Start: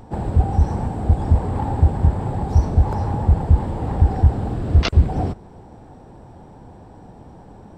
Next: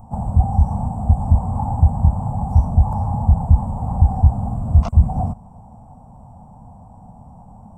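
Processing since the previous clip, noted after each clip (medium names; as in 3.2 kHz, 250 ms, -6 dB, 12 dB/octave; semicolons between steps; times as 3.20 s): FFT filter 230 Hz 0 dB, 350 Hz -24 dB, 720 Hz +1 dB, 1.1 kHz -2 dB, 1.7 kHz -25 dB, 2.5 kHz -20 dB, 4.1 kHz -26 dB, 8.2 kHz -2 dB; trim +1.5 dB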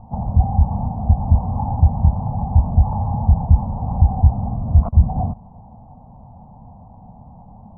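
low-pass 1.1 kHz 24 dB/octave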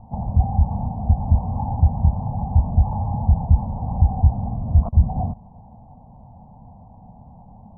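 low-pass 1.1 kHz 24 dB/octave; trim -2.5 dB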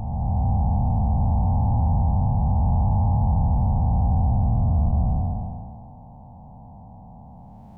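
spectral blur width 611 ms; trim +3 dB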